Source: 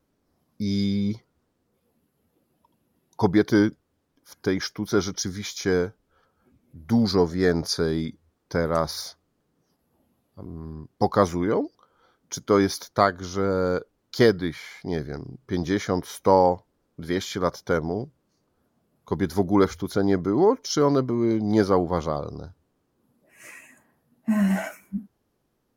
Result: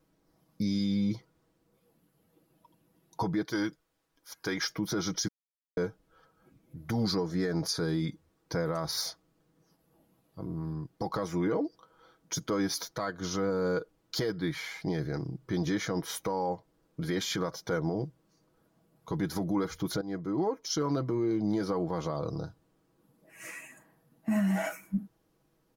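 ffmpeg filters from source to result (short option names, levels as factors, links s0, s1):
-filter_complex "[0:a]asettb=1/sr,asplit=3[s0][s1][s2];[s0]atrim=end=3.454[s3];[s1]atrim=start=3.45:end=4.64,asetpts=PTS-STARTPTS,afade=t=in:d=0.004:c=qsin,afade=t=out:st=1.186:d=0.004:c=qsin,equalizer=f=160:w=0.32:g=-11.5[s4];[s2]atrim=start=4.636[s5];[s3][s4]acrossfade=d=0.004:c1=hsin:c2=qsin[s6];[s6][s5]acrossfade=d=0.004:c1=qsin:c2=hsin,asplit=4[s7][s8][s9][s10];[s7]atrim=end=5.28,asetpts=PTS-STARTPTS,afade=t=out:st=5.276:d=0.004:c=hsin[s11];[s8]atrim=start=5.28:end=5.77,asetpts=PTS-STARTPTS,volume=0[s12];[s9]atrim=start=5.77:end=20.01,asetpts=PTS-STARTPTS,afade=t=in:d=0.004:c=hsin,afade=t=out:st=14.236:d=0.004:c=hsin:silence=0.158489[s13];[s10]atrim=start=20.01,asetpts=PTS-STARTPTS,afade=t=in:d=1.75:silence=0.158489[s14];[s11][s12][s13][s14]concat=n=4:v=0:a=1,aecho=1:1:6.2:0.58,acompressor=threshold=0.0631:ratio=5,alimiter=limit=0.0841:level=0:latency=1:release=29"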